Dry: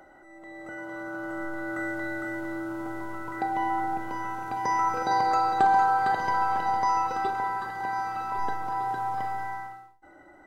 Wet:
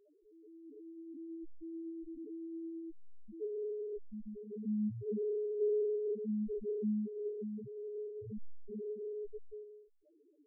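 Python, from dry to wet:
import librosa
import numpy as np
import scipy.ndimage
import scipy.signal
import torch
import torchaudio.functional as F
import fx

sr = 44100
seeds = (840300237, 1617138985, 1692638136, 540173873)

y = fx.sample_hold(x, sr, seeds[0], rate_hz=1200.0, jitter_pct=0)
y = fx.spec_topn(y, sr, count=1)
y = F.gain(torch.from_numpy(y), -3.0).numpy()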